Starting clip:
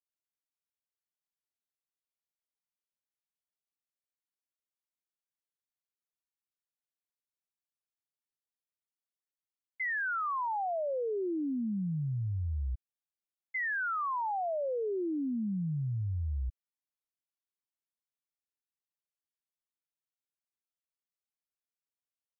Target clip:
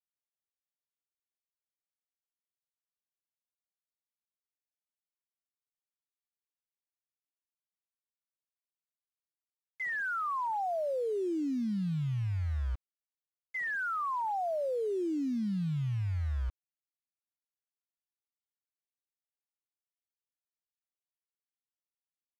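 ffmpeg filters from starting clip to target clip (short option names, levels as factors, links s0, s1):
-af "acrusher=bits=7:mix=0:aa=0.000001,aemphasis=mode=reproduction:type=75fm"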